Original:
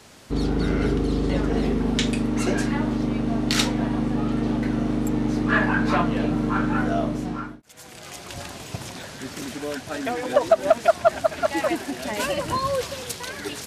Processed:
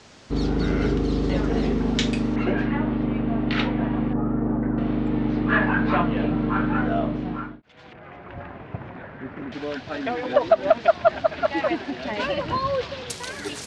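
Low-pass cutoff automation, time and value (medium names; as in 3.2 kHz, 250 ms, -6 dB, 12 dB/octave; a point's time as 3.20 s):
low-pass 24 dB/octave
6.9 kHz
from 2.36 s 3 kHz
from 4.13 s 1.5 kHz
from 4.78 s 3.5 kHz
from 7.93 s 2 kHz
from 9.52 s 4.3 kHz
from 13.10 s 10 kHz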